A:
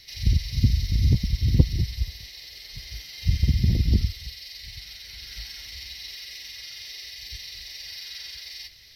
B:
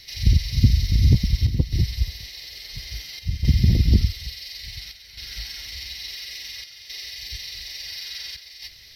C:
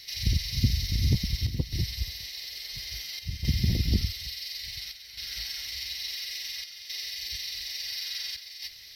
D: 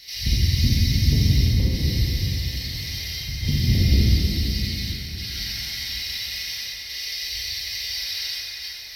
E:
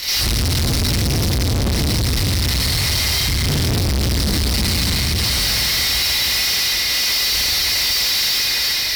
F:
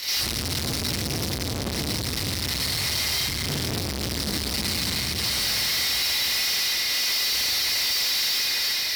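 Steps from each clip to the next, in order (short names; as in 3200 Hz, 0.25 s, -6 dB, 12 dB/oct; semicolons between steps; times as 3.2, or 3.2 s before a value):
chopper 0.58 Hz, depth 60%, duty 85%; gain +4 dB
tilt +1.5 dB/oct; gain -3.5 dB
plate-style reverb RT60 3.9 s, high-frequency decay 0.45×, DRR -7.5 dB
fuzz box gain 41 dB, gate -48 dBFS; gain -3.5 dB
HPF 190 Hz 6 dB/oct; gain -6 dB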